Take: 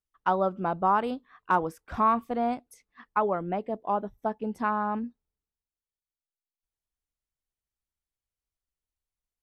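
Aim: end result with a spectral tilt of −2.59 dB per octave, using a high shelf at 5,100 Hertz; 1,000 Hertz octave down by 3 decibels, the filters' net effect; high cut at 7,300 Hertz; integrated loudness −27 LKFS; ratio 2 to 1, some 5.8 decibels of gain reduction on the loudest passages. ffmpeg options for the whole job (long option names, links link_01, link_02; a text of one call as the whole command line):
ffmpeg -i in.wav -af "lowpass=7300,equalizer=frequency=1000:width_type=o:gain=-4,highshelf=frequency=5100:gain=8.5,acompressor=threshold=-32dB:ratio=2,volume=8dB" out.wav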